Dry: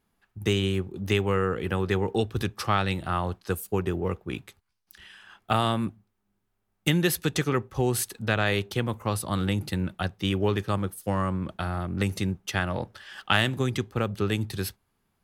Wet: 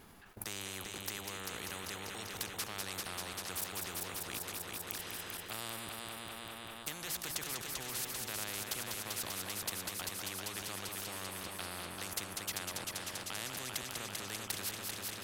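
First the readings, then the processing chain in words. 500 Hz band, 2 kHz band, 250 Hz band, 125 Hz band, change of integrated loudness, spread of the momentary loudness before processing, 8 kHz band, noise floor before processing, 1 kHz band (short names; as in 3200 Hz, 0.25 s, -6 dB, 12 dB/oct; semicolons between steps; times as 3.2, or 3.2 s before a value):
-19.0 dB, -11.0 dB, -21.0 dB, -23.0 dB, -12.0 dB, 7 LU, -0.5 dB, -76 dBFS, -14.0 dB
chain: level quantiser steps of 19 dB; multi-head echo 0.196 s, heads first and second, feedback 68%, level -11.5 dB; spectral compressor 4:1; gain +8 dB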